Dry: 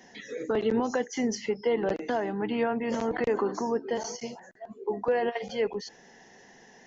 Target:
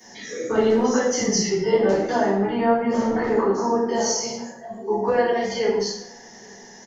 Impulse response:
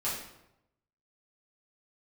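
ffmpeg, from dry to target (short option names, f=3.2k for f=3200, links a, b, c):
-filter_complex "[0:a]bandreject=f=2.6k:w=12,acrossover=split=280|340|2500[a][b][c][d];[a]asoftclip=type=hard:threshold=-34dB[e];[e][b][c][d]amix=inputs=4:normalize=0,highshelf=f=4.2k:t=q:w=1.5:g=6.5,bandreject=f=45.5:t=h:w=4,bandreject=f=91:t=h:w=4,bandreject=f=136.5:t=h:w=4,bandreject=f=182:t=h:w=4,bandreject=f=227.5:t=h:w=4,bandreject=f=273:t=h:w=4,bandreject=f=318.5:t=h:w=4,bandreject=f=364:t=h:w=4,bandreject=f=409.5:t=h:w=4,bandreject=f=455:t=h:w=4,bandreject=f=500.5:t=h:w=4,bandreject=f=546:t=h:w=4,bandreject=f=591.5:t=h:w=4,bandreject=f=637:t=h:w=4,bandreject=f=682.5:t=h:w=4,bandreject=f=728:t=h:w=4,bandreject=f=773.5:t=h:w=4,bandreject=f=819:t=h:w=4,bandreject=f=864.5:t=h:w=4,bandreject=f=910:t=h:w=4,bandreject=f=955.5:t=h:w=4,bandreject=f=1.001k:t=h:w=4,bandreject=f=1.0465k:t=h:w=4,bandreject=f=1.092k:t=h:w=4,bandreject=f=1.1375k:t=h:w=4,bandreject=f=1.183k:t=h:w=4,bandreject=f=1.2285k:t=h:w=4,bandreject=f=1.274k:t=h:w=4,bandreject=f=1.3195k:t=h:w=4,bandreject=f=1.365k:t=h:w=4,bandreject=f=1.4105k:t=h:w=4,bandreject=f=1.456k:t=h:w=4,bandreject=f=1.5015k:t=h:w=4,bandreject=f=1.547k:t=h:w=4,bandreject=f=1.5925k:t=h:w=4,bandreject=f=1.638k:t=h:w=4,bandreject=f=1.6835k:t=h:w=4,asettb=1/sr,asplit=3[f][g][h];[f]atrim=end=1.204[i];[g]atrim=start=1.2:end=1.73,asetpts=PTS-STARTPTS,afade=t=in:d=0.004:c=qsin,afade=t=out:st=0.526:d=0.004:c=qsin,afreqshift=-33[j];[h]atrim=start=1.726[k];[i][j]acrossfade=d=0.004:c1=hsin:c2=qsin[l];[l][k]acrossfade=d=0.004:c1=qsin:c2=hsin,asettb=1/sr,asplit=3[m][n][o];[m]atrim=end=2.324[p];[n]atrim=start=2.32:end=3.85,asetpts=PTS-STARTPTS,afade=t=in:d=0.004:c=qsin,afade=t=out:st=1.526:d=0.004:c=qsin,aemphasis=mode=reproduction:type=75kf[q];[o]atrim=start=3.846[r];[p][q]acrossfade=d=0.004:c1=hsin:c2=qsin[s];[s][r]acrossfade=d=0.004:c1=qsin:c2=hsin,asplit=2[t][u];[u]adelay=816.3,volume=-29dB,highshelf=f=4k:g=-18.4[v];[t][v]amix=inputs=2:normalize=0[w];[1:a]atrim=start_sample=2205,afade=t=out:st=0.35:d=0.01,atrim=end_sample=15876[x];[w][x]afir=irnorm=-1:irlink=0,volume=3dB"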